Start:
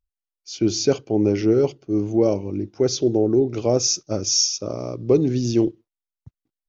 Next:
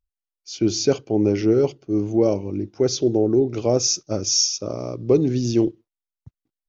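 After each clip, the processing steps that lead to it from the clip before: nothing audible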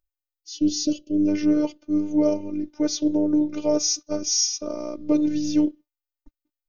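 spectral gain 0.34–1.28, 510–2500 Hz -27 dB; robotiser 301 Hz

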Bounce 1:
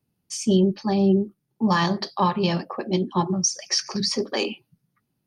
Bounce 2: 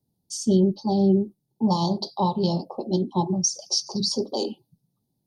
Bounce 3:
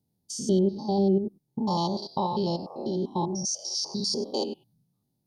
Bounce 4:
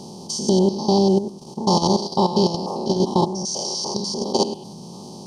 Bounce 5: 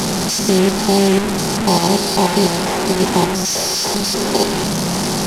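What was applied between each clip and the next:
Chebyshev band-stop 890–3700 Hz, order 3
stepped spectrum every 0.1 s; dynamic EQ 150 Hz, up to -6 dB, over -35 dBFS, Q 1.2
per-bin compression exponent 0.4; level quantiser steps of 11 dB; gain +6.5 dB
delta modulation 64 kbps, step -15.5 dBFS; gain +3 dB

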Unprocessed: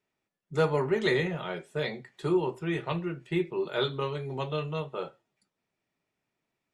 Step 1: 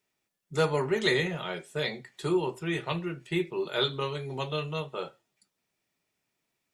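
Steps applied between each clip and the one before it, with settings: high shelf 3100 Hz +10.5 dB; gain -1 dB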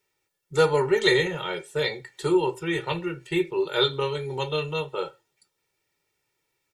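comb 2.2 ms, depth 72%; gain +2.5 dB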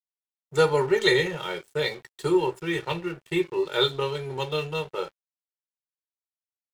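crossover distortion -44.5 dBFS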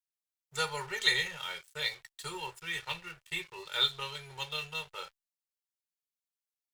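passive tone stack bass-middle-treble 10-0-10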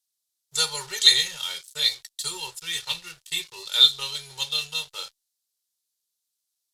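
band shelf 6700 Hz +15.5 dB 2.3 oct

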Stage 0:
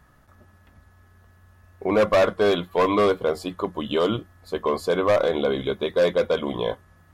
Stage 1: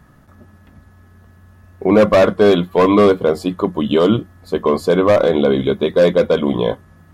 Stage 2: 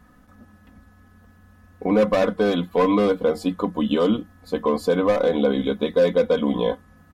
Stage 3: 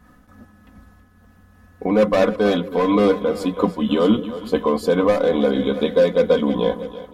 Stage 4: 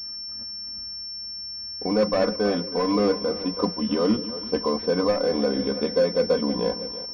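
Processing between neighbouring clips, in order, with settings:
bell 200 Hz +8.5 dB 2 oct; gain +4.5 dB
compressor 2:1, threshold -14 dBFS, peak gain reduction 4.5 dB; comb 4 ms, depth 68%; gain -5.5 dB
split-band echo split 440 Hz, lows 0.17 s, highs 0.324 s, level -12.5 dB; noise-modulated level, depth 60%; gain +5.5 dB
in parallel at -9 dB: requantised 6-bit, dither none; on the sum: pulse-width modulation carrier 5400 Hz; gain -8 dB

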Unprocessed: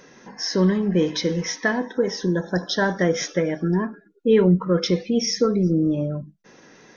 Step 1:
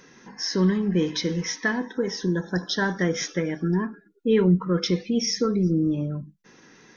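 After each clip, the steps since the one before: bell 610 Hz -9 dB 0.65 oct; gain -1.5 dB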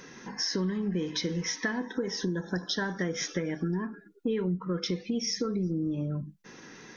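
compressor 5:1, threshold -32 dBFS, peak gain reduction 15.5 dB; gain +3.5 dB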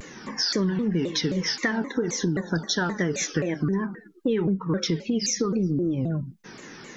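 shaped vibrato saw down 3.8 Hz, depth 250 cents; gain +5.5 dB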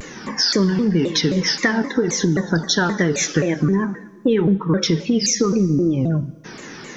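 reverb RT60 1.5 s, pre-delay 11 ms, DRR 16.5 dB; gain +7 dB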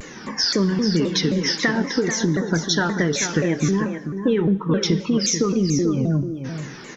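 echo 0.438 s -8.5 dB; gain -2.5 dB

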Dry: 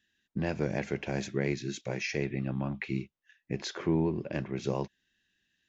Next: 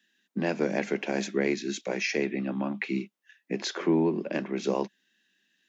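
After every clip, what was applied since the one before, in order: steep high-pass 180 Hz 48 dB/oct; gain +5 dB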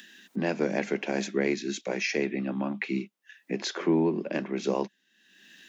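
upward compressor, threshold -36 dBFS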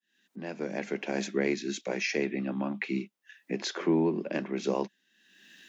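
opening faded in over 1.25 s; gain -1.5 dB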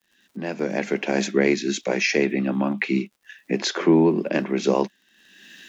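crackle 100/s -57 dBFS; gain +9 dB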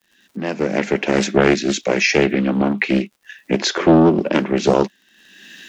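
Doppler distortion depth 0.55 ms; gain +5.5 dB

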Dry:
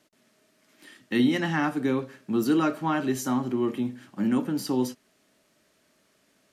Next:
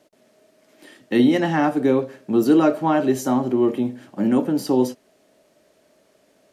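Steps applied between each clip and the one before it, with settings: EQ curve 210 Hz 0 dB, 610 Hz +9 dB, 1200 Hz -2 dB; gain +4 dB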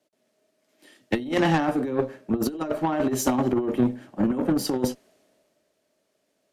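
negative-ratio compressor -20 dBFS, ratio -0.5; added harmonics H 2 -8 dB, 8 -23 dB, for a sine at -7.5 dBFS; three-band expander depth 40%; gain -2.5 dB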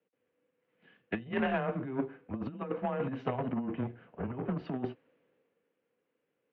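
mistuned SSB -130 Hz 330–3000 Hz; gain -7 dB

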